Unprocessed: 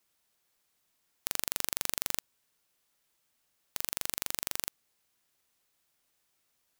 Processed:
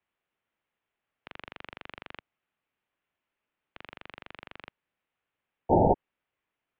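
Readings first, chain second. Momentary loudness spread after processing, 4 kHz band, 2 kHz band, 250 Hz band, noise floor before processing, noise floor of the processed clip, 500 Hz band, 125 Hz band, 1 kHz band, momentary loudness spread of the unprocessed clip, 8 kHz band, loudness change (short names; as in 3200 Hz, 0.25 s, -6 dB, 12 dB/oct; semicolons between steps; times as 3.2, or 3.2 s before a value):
21 LU, -12.0 dB, -3.5 dB, +19.5 dB, -77 dBFS, under -85 dBFS, +20.5 dB, +19.5 dB, +15.5 dB, 7 LU, under -40 dB, +8.5 dB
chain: painted sound noise, 5.69–5.94, 210–1200 Hz -17 dBFS; mistuned SSB -260 Hz 310–3200 Hz; gain -3 dB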